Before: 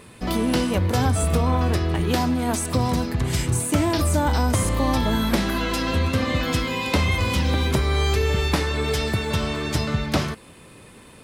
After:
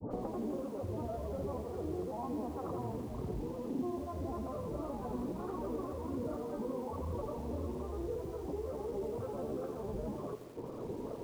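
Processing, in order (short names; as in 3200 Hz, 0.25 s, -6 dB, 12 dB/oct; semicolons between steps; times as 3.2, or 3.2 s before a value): elliptic low-pass 1100 Hz, stop band 50 dB; reverb removal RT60 0.56 s; bell 430 Hz +12 dB 1.8 oct; limiter -18.5 dBFS, peak gain reduction 15.5 dB; compressor 20:1, threshold -39 dBFS, peak gain reduction 18 dB; grains 0.1 s, pitch spread up and down by 3 st; harmonic tremolo 2.1 Hz, depth 50%, crossover 600 Hz; resonator 120 Hz, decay 1 s, harmonics all, mix 60%; lo-fi delay 84 ms, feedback 80%, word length 11-bit, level -11 dB; gain +13.5 dB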